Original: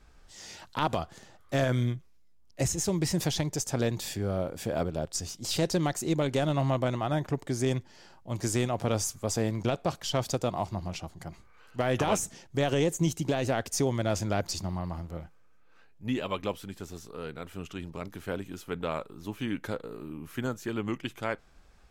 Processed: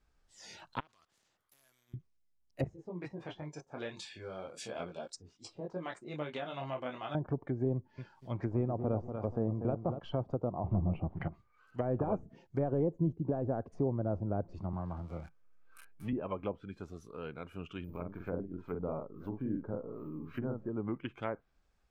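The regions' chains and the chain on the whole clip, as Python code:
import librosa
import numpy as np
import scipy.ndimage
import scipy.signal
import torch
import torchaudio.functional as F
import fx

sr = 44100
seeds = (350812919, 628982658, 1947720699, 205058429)

y = fx.chain(x, sr, fx.level_steps(step_db=22),
    fx.spectral_comp(ratio=4.0), at=(0.8, 1.94))
y = fx.chain(y, sr, fx.lowpass(hz=10000.0, slope=24),
    fx.tilt_eq(slope=3.5),
    fx.detune_double(cents=13), at=(2.64, 7.15))
y = fx.chain(y, sr, fx.lowpass(hz=8300.0, slope=12),
    fx.peak_eq(hz=2800.0, db=2.5, octaves=2.4),
    fx.echo_crushed(ms=240, feedback_pct=35, bits=9, wet_db=-8), at=(7.74, 10.0))
y = fx.chain(y, sr, fx.peak_eq(hz=150.0, db=4.0, octaves=2.5),
    fx.leveller(passes=2),
    fx.lowpass_res(hz=2900.0, q=2.1), at=(10.64, 11.28))
y = fx.chain(y, sr, fx.crossing_spikes(level_db=-31.0),
    fx.high_shelf(hz=12000.0, db=-4.0),
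    fx.band_squash(depth_pct=40), at=(14.73, 16.13))
y = fx.chain(y, sr, fx.doubler(ms=45.0, db=-4),
    fx.echo_single(ms=930, db=-21.5),
    fx.resample_bad(factor=3, down='none', up='zero_stuff'), at=(17.84, 20.69))
y = fx.env_lowpass_down(y, sr, base_hz=680.0, full_db=-26.0)
y = fx.noise_reduce_blind(y, sr, reduce_db=12)
y = F.gain(torch.from_numpy(y), -4.0).numpy()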